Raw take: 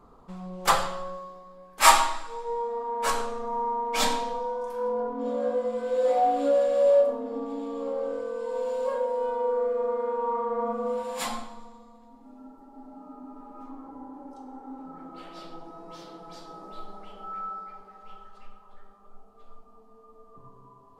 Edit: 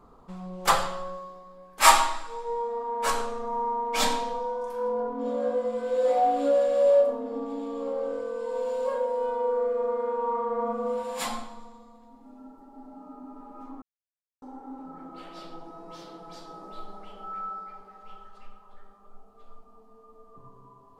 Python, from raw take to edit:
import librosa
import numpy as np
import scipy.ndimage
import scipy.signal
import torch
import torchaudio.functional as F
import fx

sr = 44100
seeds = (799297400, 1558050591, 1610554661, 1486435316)

y = fx.edit(x, sr, fx.silence(start_s=13.82, length_s=0.6), tone=tone)